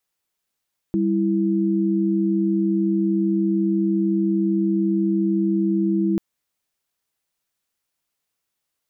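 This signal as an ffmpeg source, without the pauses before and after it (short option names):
-f lavfi -i "aevalsrc='0.1*(sin(2*PI*196*t)+sin(2*PI*329.63*t))':d=5.24:s=44100"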